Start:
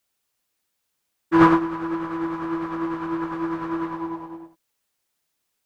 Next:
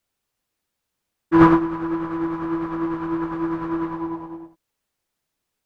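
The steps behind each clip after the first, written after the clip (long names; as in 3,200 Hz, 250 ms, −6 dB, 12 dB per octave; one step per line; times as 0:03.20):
spectral tilt −1.5 dB per octave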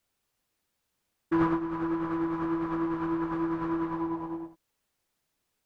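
downward compressor 2.5 to 1, threshold −29 dBFS, peak gain reduction 14.5 dB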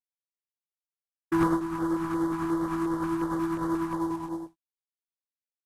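variable-slope delta modulation 64 kbit/s
downward expander −35 dBFS
auto-filter notch square 2.8 Hz 530–2,500 Hz
level +2.5 dB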